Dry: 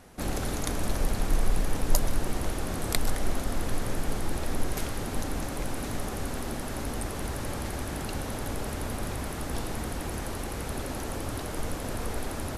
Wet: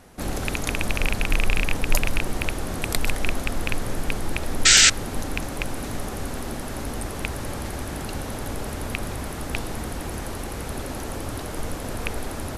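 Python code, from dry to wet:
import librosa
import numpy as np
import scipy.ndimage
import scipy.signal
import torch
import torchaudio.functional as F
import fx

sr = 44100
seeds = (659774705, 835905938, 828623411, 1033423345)

y = fx.rattle_buzz(x, sr, strikes_db=-26.0, level_db=-11.0)
y = fx.spec_paint(y, sr, seeds[0], shape='noise', start_s=4.65, length_s=0.25, low_hz=1300.0, high_hz=8300.0, level_db=-16.0)
y = y * 10.0 ** (2.5 / 20.0)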